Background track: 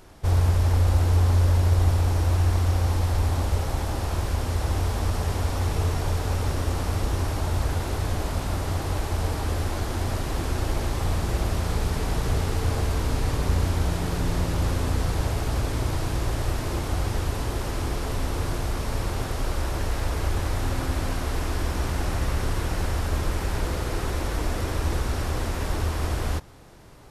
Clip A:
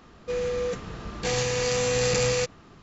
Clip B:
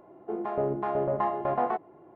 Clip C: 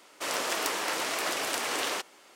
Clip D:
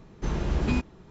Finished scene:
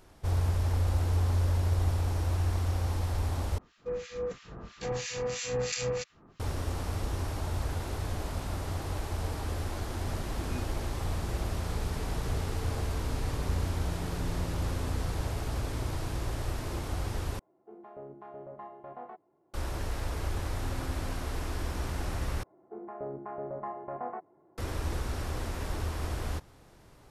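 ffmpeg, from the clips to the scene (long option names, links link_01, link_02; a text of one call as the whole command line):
ffmpeg -i bed.wav -i cue0.wav -i cue1.wav -i cue2.wav -i cue3.wav -filter_complex "[2:a]asplit=2[link_01][link_02];[0:a]volume=-7.5dB[link_03];[1:a]acrossover=split=1500[link_04][link_05];[link_04]aeval=exprs='val(0)*(1-1/2+1/2*cos(2*PI*3*n/s))':channel_layout=same[link_06];[link_05]aeval=exprs='val(0)*(1-1/2-1/2*cos(2*PI*3*n/s))':channel_layout=same[link_07];[link_06][link_07]amix=inputs=2:normalize=0[link_08];[link_02]lowpass=frequency=2200:width=0.5412,lowpass=frequency=2200:width=1.3066[link_09];[link_03]asplit=4[link_10][link_11][link_12][link_13];[link_10]atrim=end=3.584[link_14];[link_08]atrim=end=2.82,asetpts=PTS-STARTPTS,volume=-4dB[link_15];[link_11]atrim=start=6.396:end=17.394[link_16];[link_01]atrim=end=2.15,asetpts=PTS-STARTPTS,volume=-17.5dB[link_17];[link_12]atrim=start=19.536:end=22.434[link_18];[link_09]atrim=end=2.15,asetpts=PTS-STARTPTS,volume=-10.5dB[link_19];[link_13]atrim=start=24.576[link_20];[4:a]atrim=end=1.1,asetpts=PTS-STARTPTS,volume=-15dB,afade=type=in:duration=0.004:curve=hsin,afade=type=out:start_time=1.096:duration=0.004:curve=hsin,adelay=9830[link_21];[link_14][link_15]acrossfade=duration=0.004:curve1=hsin:curve2=hsin[link_22];[link_22][link_16]acrossfade=duration=0.004:curve1=hsin:curve2=hsin[link_23];[link_23][link_17]acrossfade=duration=0.004:curve1=hsin:curve2=hsin[link_24];[link_24][link_18]acrossfade=duration=0.004:curve1=hsin:curve2=hsin[link_25];[link_25][link_19]acrossfade=duration=0.004:curve1=hsin:curve2=hsin[link_26];[link_26][link_20]acrossfade=duration=0.004:curve1=hsin:curve2=hsin[link_27];[link_27][link_21]amix=inputs=2:normalize=0" out.wav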